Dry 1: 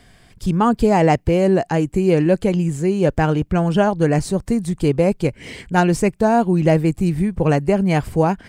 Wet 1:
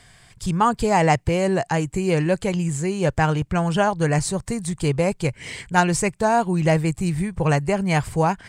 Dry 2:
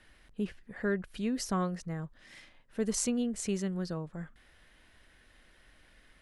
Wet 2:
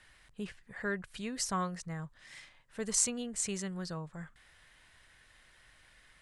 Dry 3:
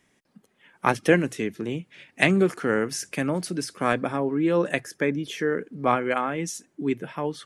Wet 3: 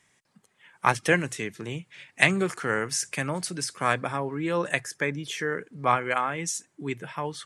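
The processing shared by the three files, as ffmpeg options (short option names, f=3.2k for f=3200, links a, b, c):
-af "equalizer=f=125:t=o:w=1:g=7,equalizer=f=250:t=o:w=1:g=-5,equalizer=f=1k:t=o:w=1:g=6,equalizer=f=2k:t=o:w=1:g=5,equalizer=f=4k:t=o:w=1:g=4,equalizer=f=8k:t=o:w=1:g=11,volume=-5.5dB"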